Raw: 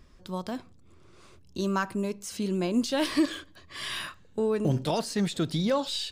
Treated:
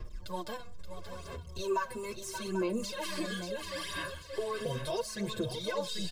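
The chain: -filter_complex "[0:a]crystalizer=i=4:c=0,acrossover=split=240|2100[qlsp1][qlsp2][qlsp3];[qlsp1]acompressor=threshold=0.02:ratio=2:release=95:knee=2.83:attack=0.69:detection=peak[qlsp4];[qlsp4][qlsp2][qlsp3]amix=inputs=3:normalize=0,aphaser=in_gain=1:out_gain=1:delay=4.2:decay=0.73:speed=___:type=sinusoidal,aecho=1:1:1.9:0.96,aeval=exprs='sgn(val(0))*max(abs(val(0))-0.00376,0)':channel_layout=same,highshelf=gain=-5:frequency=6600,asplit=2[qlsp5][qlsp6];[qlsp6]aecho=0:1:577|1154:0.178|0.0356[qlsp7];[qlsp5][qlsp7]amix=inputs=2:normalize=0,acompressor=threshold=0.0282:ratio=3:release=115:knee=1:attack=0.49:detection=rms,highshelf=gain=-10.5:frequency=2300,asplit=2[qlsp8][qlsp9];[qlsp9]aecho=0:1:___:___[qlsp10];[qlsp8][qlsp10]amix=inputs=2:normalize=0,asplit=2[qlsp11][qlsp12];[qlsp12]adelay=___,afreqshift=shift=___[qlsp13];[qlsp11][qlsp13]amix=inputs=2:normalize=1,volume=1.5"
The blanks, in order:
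0.75, 790, 0.355, 6.1, -0.36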